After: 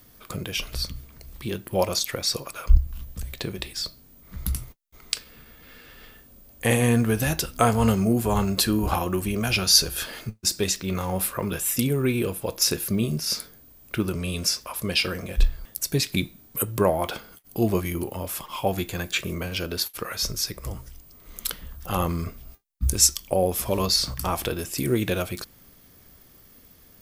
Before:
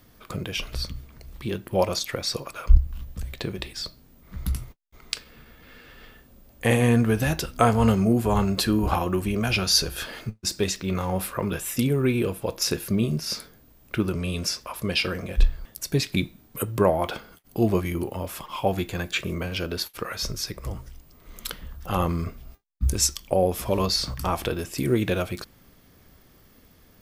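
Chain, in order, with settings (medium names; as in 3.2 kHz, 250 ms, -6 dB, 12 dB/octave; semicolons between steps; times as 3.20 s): treble shelf 5.6 kHz +9.5 dB; trim -1 dB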